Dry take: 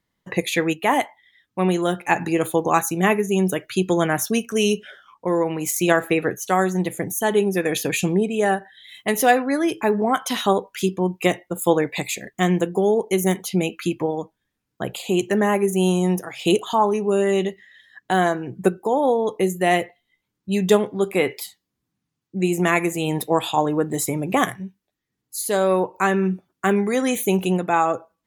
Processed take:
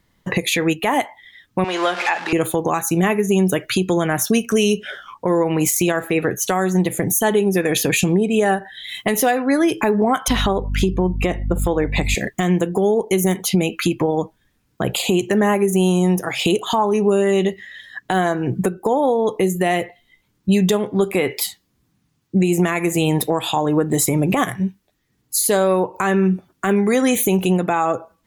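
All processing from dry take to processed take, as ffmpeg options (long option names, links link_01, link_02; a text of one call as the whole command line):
ffmpeg -i in.wav -filter_complex "[0:a]asettb=1/sr,asplit=3[link_01][link_02][link_03];[link_01]atrim=end=1.644[link_04];[link_02]atrim=start=1.64:end=2.33,asetpts=PTS-STARTPTS,afade=type=in:duration=0.004:curve=qsin,afade=type=out:start_time=0.686:duration=0.004:curve=qsin,aeval=exprs='val(0)+0.5*0.0447*sgn(val(0))':channel_layout=same,highpass=710,lowpass=4600[link_05];[link_03]atrim=start=2.326[link_06];[link_04][link_05]acrossfade=duration=0.004:curve1=hsin:curve2=qsin[link_07];[link_07][link_06]acrossfade=duration=0.004:curve1=qsin:curve2=hsin,asettb=1/sr,asplit=3[link_08][link_09][link_10];[link_08]atrim=end=10.284[link_11];[link_09]atrim=start=10.28:end=12.15,asetpts=PTS-STARTPTS,afade=type=in:duration=0.004:curve=qsin,afade=type=out:start_time=1.866:duration=0.004:curve=qsin,lowpass=frequency=2400:poles=1,bandreject=frequency=50:width_type=h:width=6,bandreject=frequency=100:width_type=h:width=6,bandreject=frequency=150:width_type=h:width=6,aeval=exprs='val(0)+0.02*(sin(2*PI*50*n/s)+sin(2*PI*2*50*n/s)/2+sin(2*PI*3*50*n/s)/3+sin(2*PI*4*50*n/s)/4+sin(2*PI*5*50*n/s)/5)':channel_layout=same[link_12];[link_10]atrim=start=12.146[link_13];[link_11][link_12]acrossfade=duration=0.004:curve1=hsin:curve2=qsin[link_14];[link_14][link_13]acrossfade=duration=0.004:curve1=qsin:curve2=hsin,acompressor=threshold=-26dB:ratio=6,lowshelf=frequency=92:gain=8,alimiter=level_in=18.5dB:limit=-1dB:release=50:level=0:latency=1,volume=-6.5dB" out.wav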